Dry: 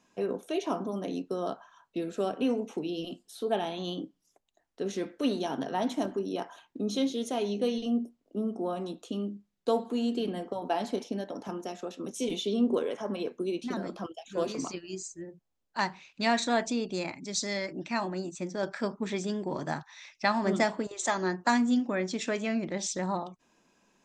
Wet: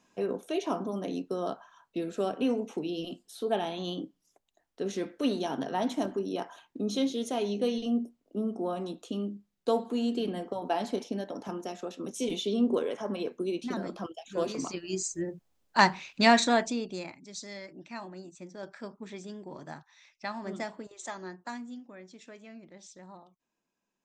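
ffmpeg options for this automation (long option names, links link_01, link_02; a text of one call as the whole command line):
ffmpeg -i in.wav -af "volume=8.5dB,afade=type=in:start_time=14.7:duration=0.46:silence=0.375837,afade=type=out:start_time=16.06:duration=0.64:silence=0.334965,afade=type=out:start_time=16.7:duration=0.53:silence=0.354813,afade=type=out:start_time=21.04:duration=0.74:silence=0.398107" out.wav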